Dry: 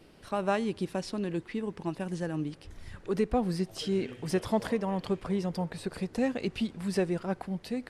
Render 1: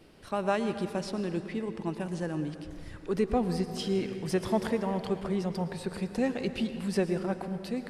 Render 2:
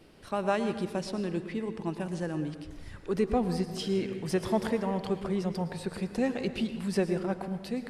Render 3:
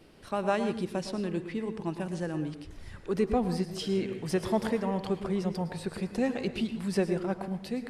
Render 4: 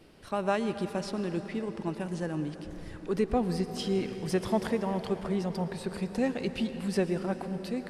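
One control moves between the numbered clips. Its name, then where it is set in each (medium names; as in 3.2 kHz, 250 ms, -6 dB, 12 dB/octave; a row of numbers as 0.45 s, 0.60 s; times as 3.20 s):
plate-style reverb, RT60: 2.2 s, 1.1 s, 0.5 s, 4.9 s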